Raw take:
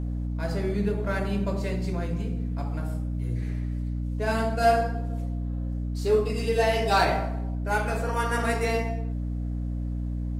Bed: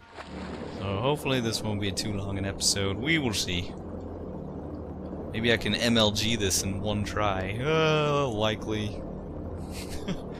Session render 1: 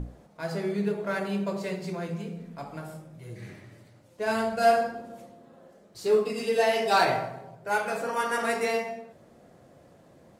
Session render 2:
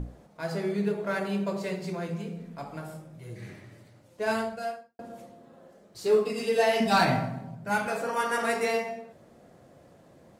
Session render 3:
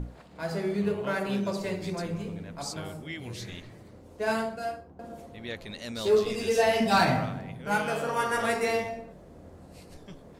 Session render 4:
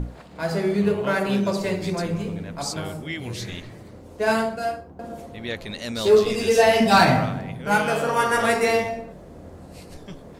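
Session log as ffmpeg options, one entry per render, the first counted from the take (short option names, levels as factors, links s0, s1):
-af "bandreject=f=60:t=h:w=6,bandreject=f=120:t=h:w=6,bandreject=f=180:t=h:w=6,bandreject=f=240:t=h:w=6,bandreject=f=300:t=h:w=6"
-filter_complex "[0:a]asettb=1/sr,asplit=3[s0][s1][s2];[s0]atrim=end=6.804[s3];[s1]atrim=start=6.8:end=7.87,asetpts=PTS-STARTPTS,afade=t=in:d=0.004:c=qsin,afade=t=out:st=1.066:d=0.004:c=qsin,lowshelf=f=310:t=q:w=3:g=7.5[s4];[s2]atrim=start=7.866[s5];[s3][s4]acrossfade=d=0.004:c1=hsin:c2=qsin[s6];[s6][s5]acrossfade=d=0.004:c1=qsin:c2=hsin,asplit=2[s7][s8];[s7]atrim=end=4.99,asetpts=PTS-STARTPTS,afade=t=out:st=4.32:d=0.67:c=qua[s9];[s8]atrim=start=4.99,asetpts=PTS-STARTPTS,afade=t=in:d=0.004:c=hsin[s10];[s9][s10]concat=n=2:v=0:a=1"
-filter_complex "[1:a]volume=0.2[s0];[0:a][s0]amix=inputs=2:normalize=0"
-af "volume=2.24"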